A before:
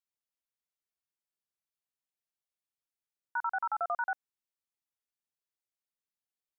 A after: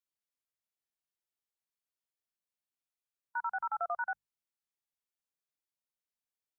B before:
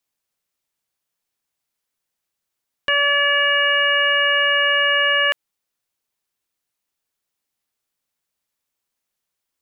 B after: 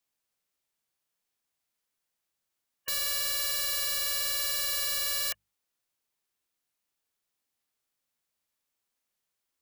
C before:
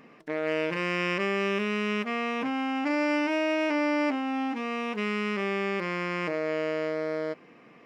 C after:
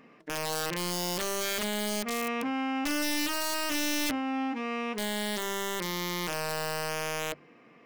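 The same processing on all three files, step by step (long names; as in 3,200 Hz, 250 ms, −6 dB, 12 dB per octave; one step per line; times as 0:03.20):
harmonic and percussive parts rebalanced percussive −4 dB
wrap-around overflow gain 22 dB
mains-hum notches 50/100/150/200 Hz
level −1.5 dB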